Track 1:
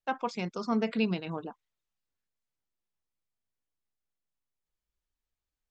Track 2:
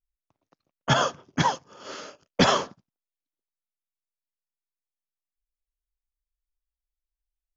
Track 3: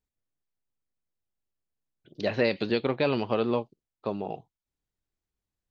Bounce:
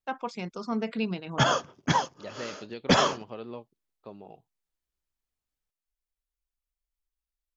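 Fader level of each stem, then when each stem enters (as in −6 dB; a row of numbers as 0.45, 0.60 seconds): −1.5, −1.5, −13.5 decibels; 0.00, 0.50, 0.00 seconds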